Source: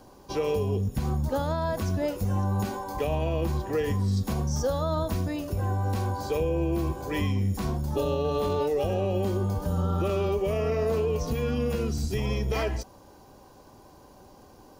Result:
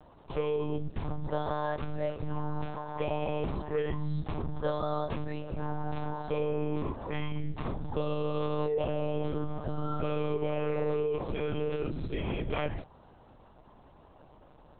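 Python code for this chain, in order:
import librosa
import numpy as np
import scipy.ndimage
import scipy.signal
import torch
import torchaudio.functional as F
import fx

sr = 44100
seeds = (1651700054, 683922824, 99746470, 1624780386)

y = fx.low_shelf(x, sr, hz=160.0, db=-4.5)
y = fx.lpc_monotone(y, sr, seeds[0], pitch_hz=150.0, order=10)
y = F.gain(torch.from_numpy(y), -3.0).numpy()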